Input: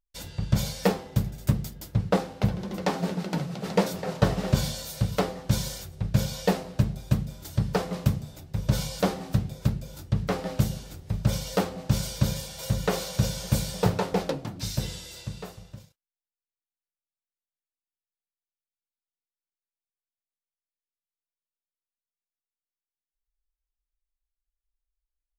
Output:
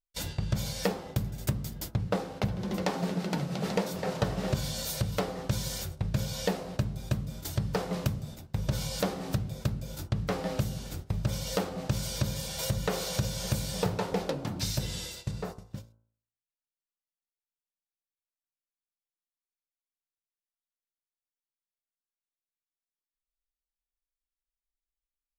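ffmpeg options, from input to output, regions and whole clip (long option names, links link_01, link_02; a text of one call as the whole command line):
ffmpeg -i in.wav -filter_complex "[0:a]asettb=1/sr,asplit=3[link_01][link_02][link_03];[link_01]atrim=end=15.314[link_04];[link_02]atrim=start=15.31:end=15.71,asetpts=PTS-STARTPTS,afade=type=in:duration=0.004:curve=qsin,afade=type=out:start_time=0.396:duration=0.004:curve=qsin,acrossover=split=4800[link_05][link_06];[link_06]acompressor=threshold=-59dB:ratio=4:attack=1:release=60[link_07];[link_05][link_07]amix=inputs=2:normalize=0,equalizer=frequency=3100:width_type=o:width=1:gain=-8.5[link_08];[link_03]atrim=start=15.706[link_09];[link_04][link_08]acrossfade=duration=0.004:curve1=hsin:curve2=qsin[link_10];[link_10][link_09]acrossfade=duration=0.004:curve1=qsin:curve2=hsin,agate=range=-15dB:threshold=-42dB:ratio=16:detection=peak,bandreject=frequency=55.65:width_type=h:width=4,bandreject=frequency=111.3:width_type=h:width=4,bandreject=frequency=166.95:width_type=h:width=4,bandreject=frequency=222.6:width_type=h:width=4,bandreject=frequency=278.25:width_type=h:width=4,bandreject=frequency=333.9:width_type=h:width=4,bandreject=frequency=389.55:width_type=h:width=4,bandreject=frequency=445.2:width_type=h:width=4,bandreject=frequency=500.85:width_type=h:width=4,bandreject=frequency=556.5:width_type=h:width=4,bandreject=frequency=612.15:width_type=h:width=4,bandreject=frequency=667.8:width_type=h:width=4,bandreject=frequency=723.45:width_type=h:width=4,bandreject=frequency=779.1:width_type=h:width=4,bandreject=frequency=834.75:width_type=h:width=4,bandreject=frequency=890.4:width_type=h:width=4,bandreject=frequency=946.05:width_type=h:width=4,bandreject=frequency=1001.7:width_type=h:width=4,bandreject=frequency=1057.35:width_type=h:width=4,bandreject=frequency=1113:width_type=h:width=4,bandreject=frequency=1168.65:width_type=h:width=4,bandreject=frequency=1224.3:width_type=h:width=4,bandreject=frequency=1279.95:width_type=h:width=4,bandreject=frequency=1335.6:width_type=h:width=4,bandreject=frequency=1391.25:width_type=h:width=4,bandreject=frequency=1446.9:width_type=h:width=4,bandreject=frequency=1502.55:width_type=h:width=4,bandreject=frequency=1558.2:width_type=h:width=4,acompressor=threshold=-34dB:ratio=3,volume=5dB" out.wav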